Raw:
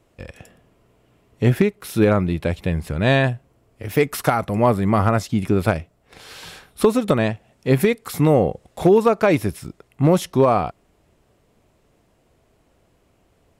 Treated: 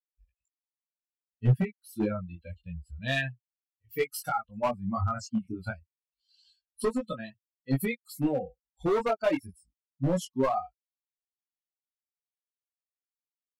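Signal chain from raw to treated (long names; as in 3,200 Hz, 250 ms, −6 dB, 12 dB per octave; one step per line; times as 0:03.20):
spectral dynamics exaggerated over time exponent 3
gain into a clipping stage and back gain 17.5 dB
multi-voice chorus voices 4, 0.25 Hz, delay 19 ms, depth 4.3 ms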